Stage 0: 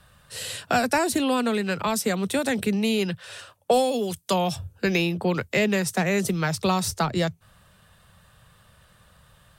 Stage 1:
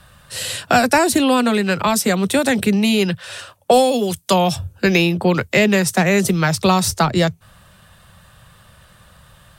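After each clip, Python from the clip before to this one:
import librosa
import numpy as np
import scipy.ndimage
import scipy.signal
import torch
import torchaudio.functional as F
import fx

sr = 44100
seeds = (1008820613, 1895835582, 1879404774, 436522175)

y = fx.notch(x, sr, hz=450.0, q=12.0)
y = F.gain(torch.from_numpy(y), 8.0).numpy()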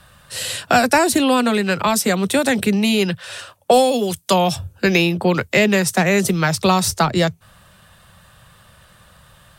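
y = fx.low_shelf(x, sr, hz=180.0, db=-3.0)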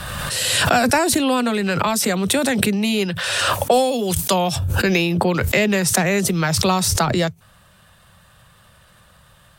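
y = fx.pre_swell(x, sr, db_per_s=23.0)
y = F.gain(torch.from_numpy(y), -3.0).numpy()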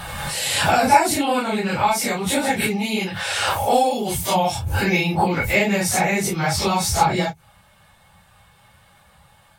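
y = fx.phase_scramble(x, sr, seeds[0], window_ms=100)
y = fx.small_body(y, sr, hz=(830.0, 2200.0), ring_ms=45, db=14)
y = F.gain(torch.from_numpy(y), -3.0).numpy()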